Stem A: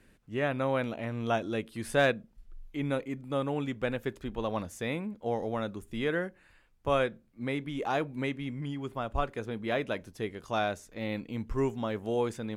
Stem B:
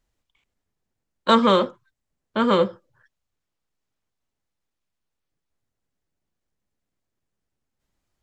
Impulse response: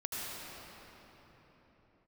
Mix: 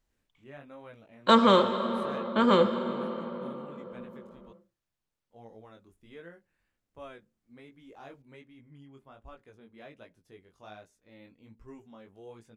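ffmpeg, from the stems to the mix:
-filter_complex "[0:a]flanger=delay=17.5:depth=4.7:speed=1.3,adelay=100,volume=0.168,asplit=3[s0][s1][s2];[s0]atrim=end=4.53,asetpts=PTS-STARTPTS,afade=t=out:st=4.526:d=0.004:c=hsin[s3];[s1]atrim=start=4.53:end=5.3,asetpts=PTS-STARTPTS,volume=0[s4];[s2]atrim=start=5.3,asetpts=PTS-STARTPTS,afade=t=in:d=0.004:c=hsin[s5];[s3][s4][s5]concat=n=3:v=0:a=1[s6];[1:a]volume=0.562,asplit=2[s7][s8];[s8]volume=0.355[s9];[2:a]atrim=start_sample=2205[s10];[s9][s10]afir=irnorm=-1:irlink=0[s11];[s6][s7][s11]amix=inputs=3:normalize=0"

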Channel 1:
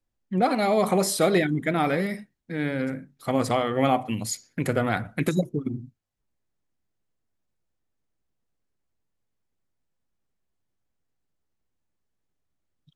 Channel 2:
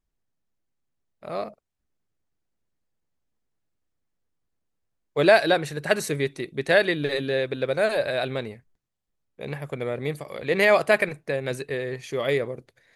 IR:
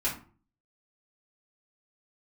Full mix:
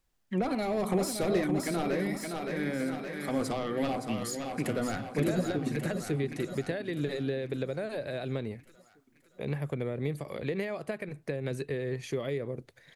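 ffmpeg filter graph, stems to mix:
-filter_complex "[0:a]highpass=f=790:p=1,aeval=exprs='0.282*sin(PI/2*2.82*val(0)/0.282)':c=same,volume=0.562,asplit=2[s0][s1];[s1]volume=0.422[s2];[1:a]acompressor=threshold=0.0447:ratio=5,volume=1.33[s3];[s2]aecho=0:1:568|1136|1704|2272|2840|3408|3976|4544:1|0.53|0.281|0.149|0.0789|0.0418|0.0222|0.0117[s4];[s0][s3][s4]amix=inputs=3:normalize=0,acrossover=split=380[s5][s6];[s6]acompressor=threshold=0.00708:ratio=2.5[s7];[s5][s7]amix=inputs=2:normalize=0"

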